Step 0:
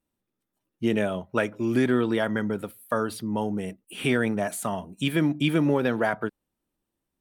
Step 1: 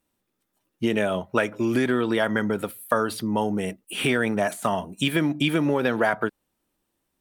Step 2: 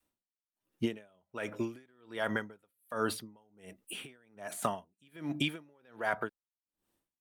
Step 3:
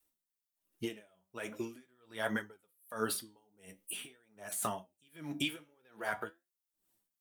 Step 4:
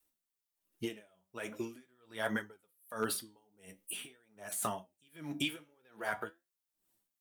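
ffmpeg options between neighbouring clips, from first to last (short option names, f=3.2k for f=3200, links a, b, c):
-af "acompressor=threshold=-25dB:ratio=3,lowshelf=f=380:g=-6,deesser=0.8,volume=8.5dB"
-af "alimiter=limit=-13dB:level=0:latency=1:release=164,adynamicequalizer=threshold=0.0141:dfrequency=210:dqfactor=0.73:tfrequency=210:tqfactor=0.73:attack=5:release=100:ratio=0.375:range=3:mode=cutabove:tftype=bell,aeval=exprs='val(0)*pow(10,-38*(0.5-0.5*cos(2*PI*1.3*n/s))/20)':c=same,volume=-2.5dB"
-af "flanger=delay=8.9:depth=7.7:regen=70:speed=0.44:shape=triangular,crystalizer=i=2:c=0,flanger=delay=2.2:depth=8.4:regen=37:speed=1.2:shape=sinusoidal,volume=3.5dB"
-af "asoftclip=type=hard:threshold=-22dB"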